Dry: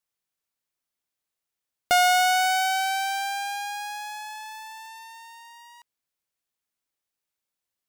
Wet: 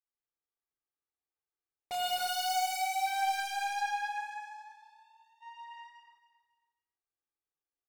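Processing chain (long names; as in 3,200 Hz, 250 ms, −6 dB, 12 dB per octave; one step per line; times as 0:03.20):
loose part that buzzes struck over −44 dBFS, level −18 dBFS
0:03.06–0:05.41: first-order pre-emphasis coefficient 0.8
low-pass that shuts in the quiet parts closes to 1,500 Hz, open at −18 dBFS
noise gate −50 dBFS, range −16 dB
comb filter 2.5 ms, depth 92%
brickwall limiter −19.5 dBFS, peak gain reduction 11 dB
hard clipping −37 dBFS, distortion −3 dB
repeating echo 274 ms, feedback 31%, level −13 dB
reverb whose tail is shaped and stops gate 380 ms flat, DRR −6 dB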